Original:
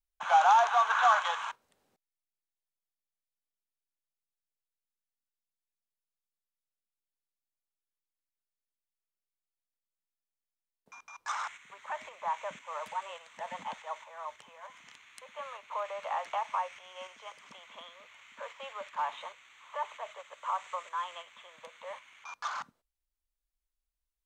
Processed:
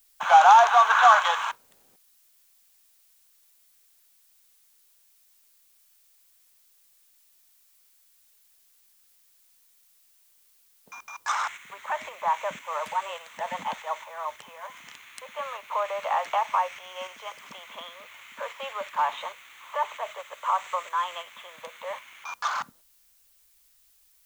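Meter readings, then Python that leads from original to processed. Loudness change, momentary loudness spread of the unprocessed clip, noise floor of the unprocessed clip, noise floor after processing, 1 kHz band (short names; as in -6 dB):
+7.5 dB, 25 LU, under -85 dBFS, -62 dBFS, +8.0 dB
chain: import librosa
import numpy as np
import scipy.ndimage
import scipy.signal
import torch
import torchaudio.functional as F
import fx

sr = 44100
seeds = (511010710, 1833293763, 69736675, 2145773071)

y = fx.dmg_noise_colour(x, sr, seeds[0], colour='blue', level_db=-70.0)
y = y * 10.0 ** (8.0 / 20.0)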